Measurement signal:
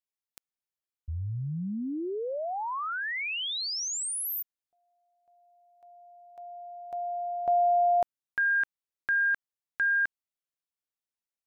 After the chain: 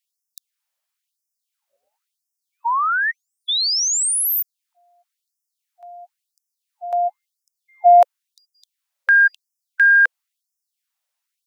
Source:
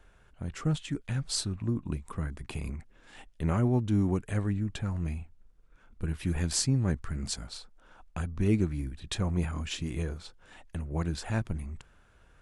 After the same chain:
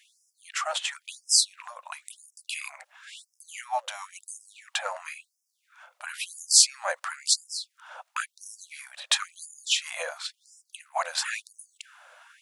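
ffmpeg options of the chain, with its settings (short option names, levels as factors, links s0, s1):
-af "acontrast=67,lowshelf=f=410:g=7,afftfilt=real='re*gte(b*sr/1024,500*pow(5100/500,0.5+0.5*sin(2*PI*0.97*pts/sr)))':imag='im*gte(b*sr/1024,500*pow(5100/500,0.5+0.5*sin(2*PI*0.97*pts/sr)))':win_size=1024:overlap=0.75,volume=2.11"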